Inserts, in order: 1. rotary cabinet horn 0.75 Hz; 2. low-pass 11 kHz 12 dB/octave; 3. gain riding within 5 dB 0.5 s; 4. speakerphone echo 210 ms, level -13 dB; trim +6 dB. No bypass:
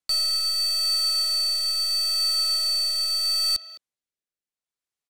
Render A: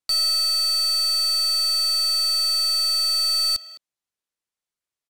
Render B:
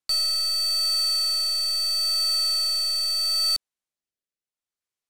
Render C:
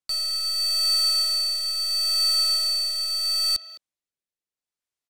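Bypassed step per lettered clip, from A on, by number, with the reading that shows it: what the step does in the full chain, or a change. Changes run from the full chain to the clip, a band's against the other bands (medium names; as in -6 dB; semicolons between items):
1, 1 kHz band +2.5 dB; 4, echo-to-direct -18.0 dB to none; 3, momentary loudness spread change +3 LU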